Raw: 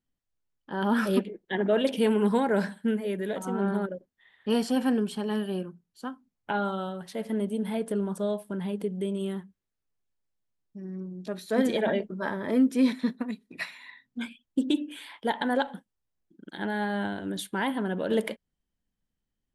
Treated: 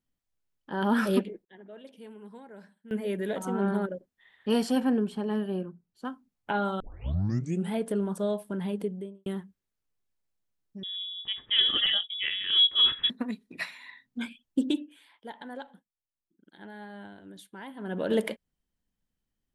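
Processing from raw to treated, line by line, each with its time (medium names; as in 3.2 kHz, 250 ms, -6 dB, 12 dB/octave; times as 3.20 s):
1.07–3.29 s: dip -23 dB, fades 0.38 s logarithmic
4.80–6.05 s: treble shelf 2.3 kHz -10.5 dB
6.80 s: tape start 0.93 s
8.76–9.26 s: studio fade out
10.83–13.10 s: frequency inversion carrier 3.6 kHz
14.66–18.01 s: dip -14.5 dB, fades 0.24 s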